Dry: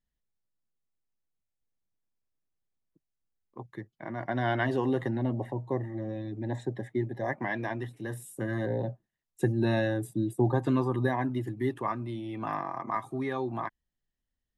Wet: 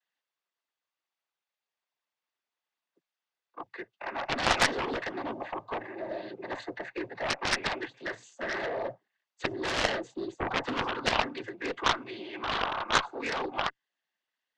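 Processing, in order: noise-vocoded speech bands 16; band-pass 730–3900 Hz; Chebyshev shaper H 2 -7 dB, 5 -15 dB, 7 -6 dB, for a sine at -18.5 dBFS; trim +6 dB

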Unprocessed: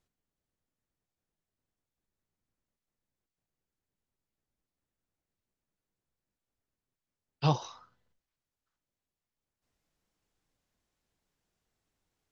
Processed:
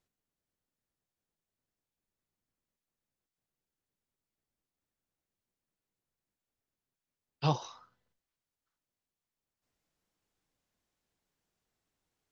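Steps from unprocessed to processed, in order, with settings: bass shelf 91 Hz -5.5 dB; trim -1.5 dB

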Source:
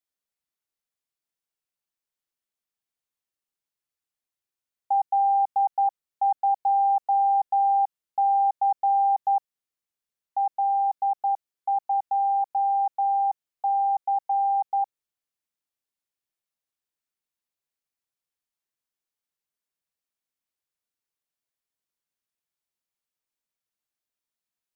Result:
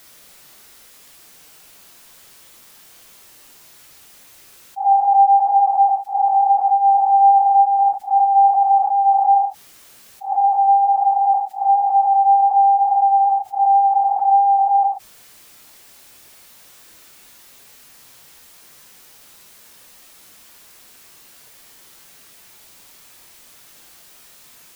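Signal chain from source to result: phase randomisation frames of 200 ms; hum notches 50/100 Hz; level flattener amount 50%; trim +5.5 dB

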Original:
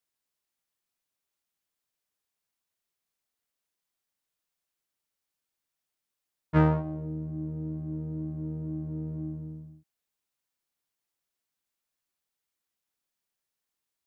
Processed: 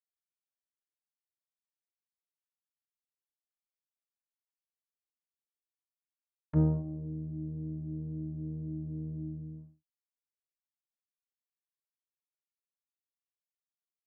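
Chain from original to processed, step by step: expander -40 dBFS; low-pass that closes with the level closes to 380 Hz, closed at -35.5 dBFS; trim -3 dB

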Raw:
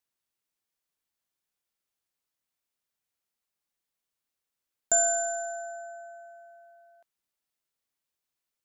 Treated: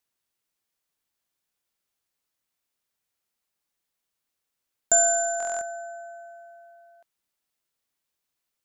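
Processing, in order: buffer glitch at 5.38 s, samples 1024, times 9; trim +4 dB

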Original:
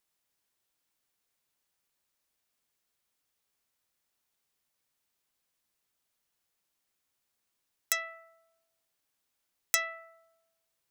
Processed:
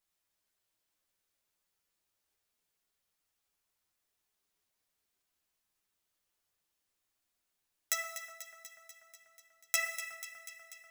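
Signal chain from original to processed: chorus voices 6, 0.9 Hz, delay 11 ms, depth 1.8 ms; on a send: echo whose repeats swap between lows and highs 122 ms, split 1.7 kHz, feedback 83%, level -10 dB; on the sum: gated-style reverb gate 410 ms falling, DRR 9 dB

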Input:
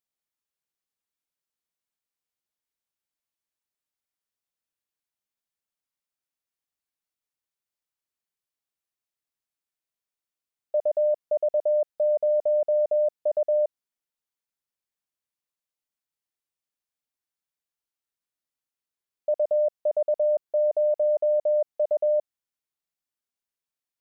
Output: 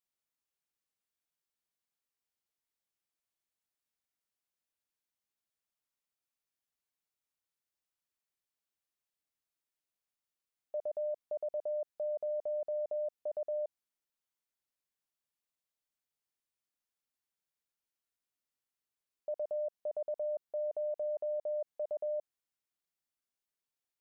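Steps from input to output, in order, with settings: peak limiter -29 dBFS, peak gain reduction 10.5 dB; trim -2.5 dB

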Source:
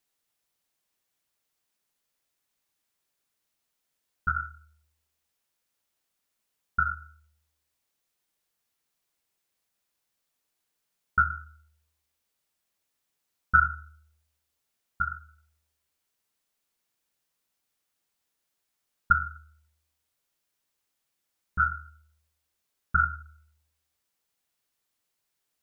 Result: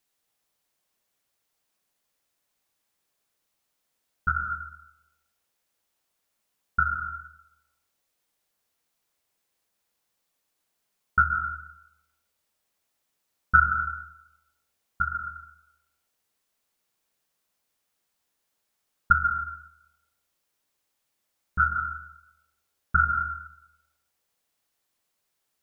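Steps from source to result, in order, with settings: on a send: peaking EQ 650 Hz +11 dB 2.5 oct + reverberation RT60 0.85 s, pre-delay 117 ms, DRR 4.5 dB; on the sum: trim +2 dB

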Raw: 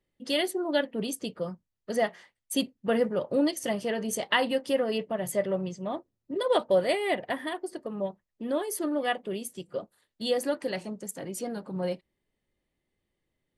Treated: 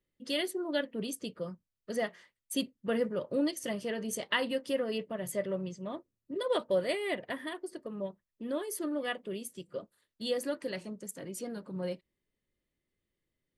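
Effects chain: peaking EQ 780 Hz -8.5 dB 0.38 oct; trim -4.5 dB

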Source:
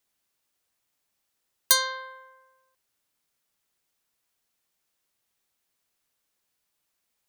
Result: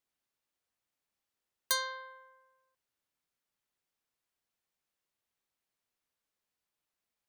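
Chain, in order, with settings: treble shelf 4.4 kHz -6.5 dB; trim -7 dB

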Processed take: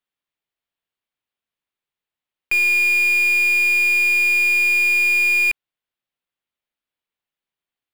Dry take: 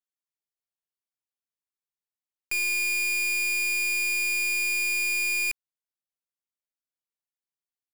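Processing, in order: resonant high shelf 4.4 kHz -9 dB, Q 1.5; trim +8.5 dB

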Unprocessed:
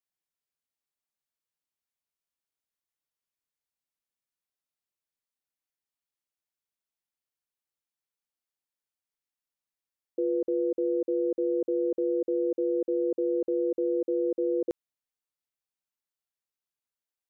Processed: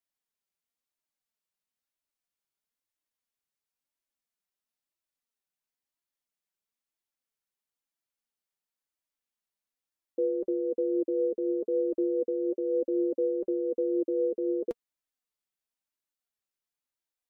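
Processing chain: flange 1 Hz, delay 2.9 ms, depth 2.5 ms, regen +39%; trim +3.5 dB

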